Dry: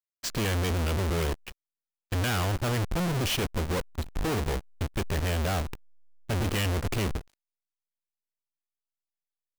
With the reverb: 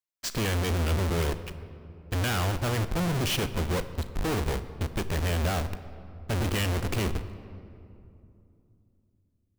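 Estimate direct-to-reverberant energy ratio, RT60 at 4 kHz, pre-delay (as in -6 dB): 11.5 dB, 1.5 s, 35 ms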